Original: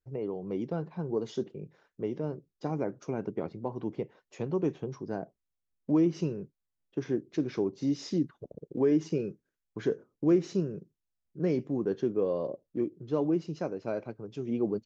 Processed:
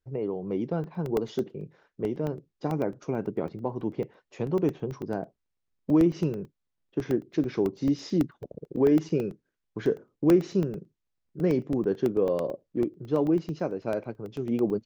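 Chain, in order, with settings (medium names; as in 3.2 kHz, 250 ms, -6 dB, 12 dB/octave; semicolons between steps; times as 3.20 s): distance through air 70 m; crackling interface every 0.11 s, samples 64, zero, from 0.84 s; trim +4 dB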